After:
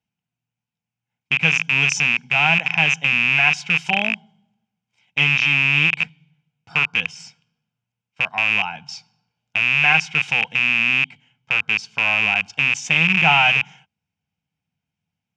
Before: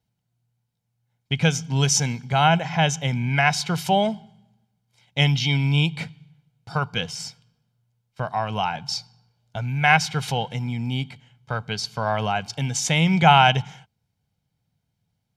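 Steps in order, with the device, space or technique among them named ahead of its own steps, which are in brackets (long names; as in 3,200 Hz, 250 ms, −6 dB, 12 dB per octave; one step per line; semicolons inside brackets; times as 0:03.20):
car door speaker with a rattle (loose part that buzzes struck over −30 dBFS, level −7 dBFS; loudspeaker in its box 100–7,000 Hz, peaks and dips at 120 Hz −10 dB, 390 Hz −6 dB, 570 Hz −7 dB, 2,600 Hz +10 dB, 4,200 Hz −10 dB)
level −3.5 dB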